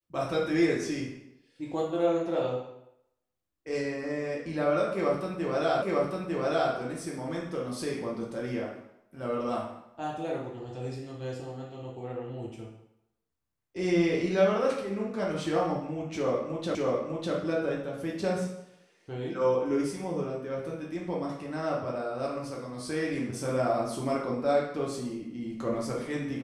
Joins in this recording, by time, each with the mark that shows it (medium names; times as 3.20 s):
5.82 s: repeat of the last 0.9 s
16.75 s: repeat of the last 0.6 s